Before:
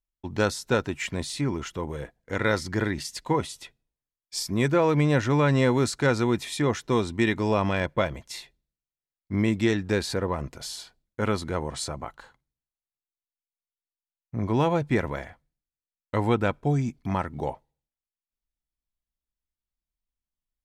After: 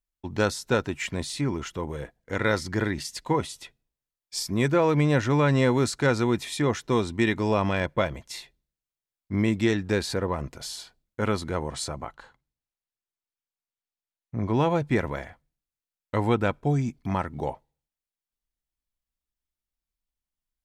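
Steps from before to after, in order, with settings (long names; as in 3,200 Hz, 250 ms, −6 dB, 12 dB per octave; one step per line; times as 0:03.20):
0:12.06–0:14.68: high-shelf EQ 10,000 Hz −10.5 dB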